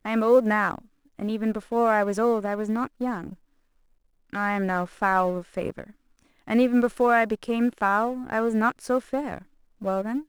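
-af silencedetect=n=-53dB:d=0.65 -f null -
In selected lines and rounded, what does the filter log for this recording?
silence_start: 3.37
silence_end: 4.30 | silence_duration: 0.93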